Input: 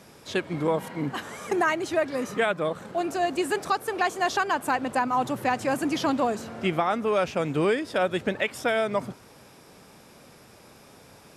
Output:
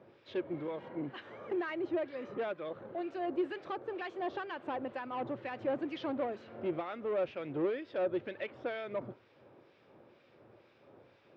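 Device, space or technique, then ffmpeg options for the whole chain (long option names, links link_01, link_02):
guitar amplifier with harmonic tremolo: -filter_complex "[0:a]acrossover=split=1500[link_01][link_02];[link_01]aeval=exprs='val(0)*(1-0.7/2+0.7/2*cos(2*PI*2.1*n/s))':channel_layout=same[link_03];[link_02]aeval=exprs='val(0)*(1-0.7/2-0.7/2*cos(2*PI*2.1*n/s))':channel_layout=same[link_04];[link_03][link_04]amix=inputs=2:normalize=0,asoftclip=type=tanh:threshold=-25dB,highpass=90,equalizer=frequency=110:width_type=q:width=4:gain=6,equalizer=frequency=180:width_type=q:width=4:gain=-5,equalizer=frequency=350:width_type=q:width=4:gain=9,equalizer=frequency=550:width_type=q:width=4:gain=8,lowpass=frequency=3500:width=0.5412,lowpass=frequency=3500:width=1.3066,volume=-9dB"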